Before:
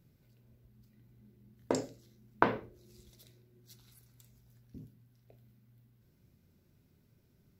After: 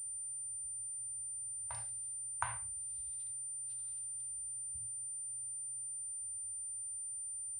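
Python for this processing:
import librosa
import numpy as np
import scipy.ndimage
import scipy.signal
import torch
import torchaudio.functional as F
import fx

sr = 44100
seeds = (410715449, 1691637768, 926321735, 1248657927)

y = scipy.signal.sosfilt(scipy.signal.ellip(3, 1.0, 50, [100.0, 840.0], 'bandstop', fs=sr, output='sos'), x)
y = fx.hpss(y, sr, part='percussive', gain_db=-10)
y = fx.pwm(y, sr, carrier_hz=9100.0)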